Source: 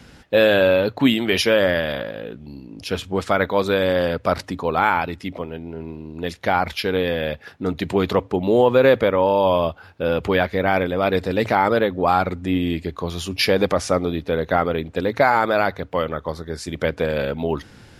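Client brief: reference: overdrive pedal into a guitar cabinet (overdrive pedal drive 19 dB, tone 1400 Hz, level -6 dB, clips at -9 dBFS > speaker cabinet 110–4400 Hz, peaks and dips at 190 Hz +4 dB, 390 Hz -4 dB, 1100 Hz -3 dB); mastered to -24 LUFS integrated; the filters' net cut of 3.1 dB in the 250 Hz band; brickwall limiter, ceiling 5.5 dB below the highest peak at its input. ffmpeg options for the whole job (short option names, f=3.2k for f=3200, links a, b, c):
-filter_complex "[0:a]equalizer=f=250:t=o:g=-5,alimiter=limit=-9dB:level=0:latency=1,asplit=2[a][b];[b]highpass=f=720:p=1,volume=19dB,asoftclip=type=tanh:threshold=-9dB[c];[a][c]amix=inputs=2:normalize=0,lowpass=f=1.4k:p=1,volume=-6dB,highpass=110,equalizer=f=190:t=q:w=4:g=4,equalizer=f=390:t=q:w=4:g=-4,equalizer=f=1.1k:t=q:w=4:g=-3,lowpass=f=4.4k:w=0.5412,lowpass=f=4.4k:w=1.3066,volume=-3dB"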